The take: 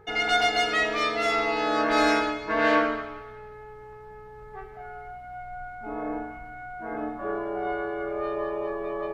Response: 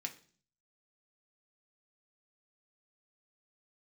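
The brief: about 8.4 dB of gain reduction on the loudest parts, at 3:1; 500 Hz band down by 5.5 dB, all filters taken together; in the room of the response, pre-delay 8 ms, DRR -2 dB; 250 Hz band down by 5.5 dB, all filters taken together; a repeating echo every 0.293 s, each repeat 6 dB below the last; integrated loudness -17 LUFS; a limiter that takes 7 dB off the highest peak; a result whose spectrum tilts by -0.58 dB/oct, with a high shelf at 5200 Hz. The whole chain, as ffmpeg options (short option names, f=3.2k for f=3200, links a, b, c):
-filter_complex "[0:a]equalizer=f=250:t=o:g=-4.5,equalizer=f=500:t=o:g=-6.5,highshelf=f=5.2k:g=-7.5,acompressor=threshold=-32dB:ratio=3,alimiter=level_in=4dB:limit=-24dB:level=0:latency=1,volume=-4dB,aecho=1:1:293|586|879|1172|1465|1758:0.501|0.251|0.125|0.0626|0.0313|0.0157,asplit=2[a][b];[1:a]atrim=start_sample=2205,adelay=8[c];[b][c]afir=irnorm=-1:irlink=0,volume=3dB[d];[a][d]amix=inputs=2:normalize=0,volume=16.5dB"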